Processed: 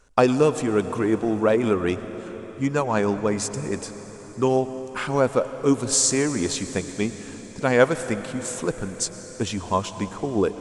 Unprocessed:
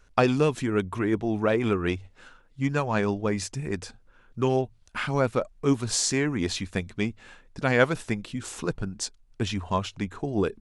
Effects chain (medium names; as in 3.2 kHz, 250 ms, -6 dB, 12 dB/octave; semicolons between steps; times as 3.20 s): graphic EQ 250/500/1000/8000 Hz +4/+6/+5/+11 dB; on a send: reverberation RT60 5.1 s, pre-delay 98 ms, DRR 11 dB; on the sum: trim -2 dB